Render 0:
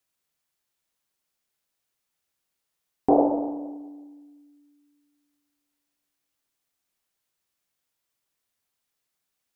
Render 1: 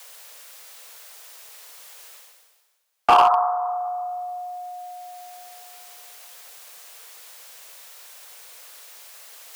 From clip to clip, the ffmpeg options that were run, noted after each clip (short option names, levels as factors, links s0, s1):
-af "areverse,acompressor=mode=upward:threshold=0.0398:ratio=2.5,areverse,afreqshift=430,volume=6.31,asoftclip=hard,volume=0.158,volume=2.24"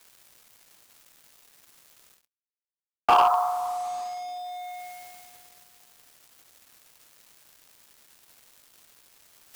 -af "acrusher=bits=5:mix=0:aa=0.5,volume=0.631"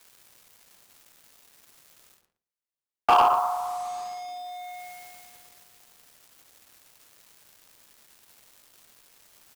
-filter_complex "[0:a]asplit=2[s0][s1];[s1]adelay=117,lowpass=f=900:p=1,volume=0.596,asplit=2[s2][s3];[s3]adelay=117,lowpass=f=900:p=1,volume=0.19,asplit=2[s4][s5];[s5]adelay=117,lowpass=f=900:p=1,volume=0.19[s6];[s0][s2][s4][s6]amix=inputs=4:normalize=0"